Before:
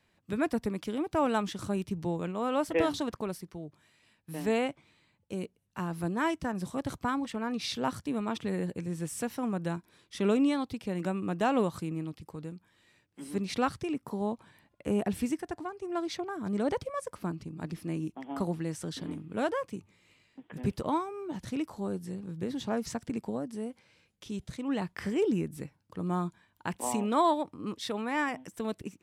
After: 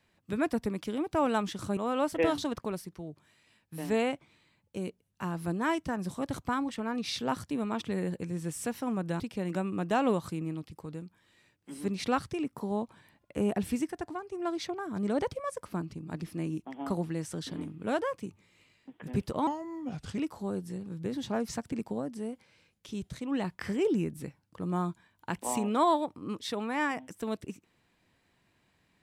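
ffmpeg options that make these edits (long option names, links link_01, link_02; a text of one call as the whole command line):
ffmpeg -i in.wav -filter_complex "[0:a]asplit=5[link_01][link_02][link_03][link_04][link_05];[link_01]atrim=end=1.772[link_06];[link_02]atrim=start=2.328:end=9.762[link_07];[link_03]atrim=start=10.698:end=20.974[link_08];[link_04]atrim=start=20.97:end=21.55,asetpts=PTS-STARTPTS,asetrate=36162,aresample=44100[link_09];[link_05]atrim=start=21.546[link_10];[link_06][link_07]acrossfade=duration=0.004:curve1=hsin:curve2=hsin[link_11];[link_11][link_08]acrossfade=duration=0.004:curve1=hsin:curve2=hsin[link_12];[link_12][link_09]acrossfade=duration=0.004:curve1=hsin:curve2=hsin[link_13];[link_13][link_10]acrossfade=duration=0.004:curve1=hsin:curve2=hsin" out.wav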